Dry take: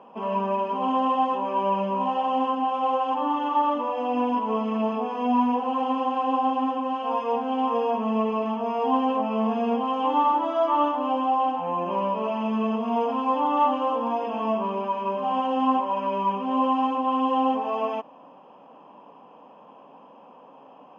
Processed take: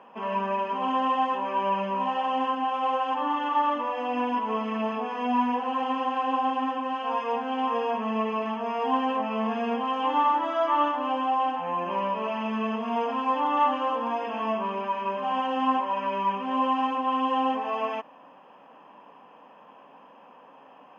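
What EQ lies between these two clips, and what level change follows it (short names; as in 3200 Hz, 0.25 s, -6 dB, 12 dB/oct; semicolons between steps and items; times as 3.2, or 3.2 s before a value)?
bell 1800 Hz +12.5 dB 0.9 oct; high shelf 4100 Hz +7.5 dB; -4.5 dB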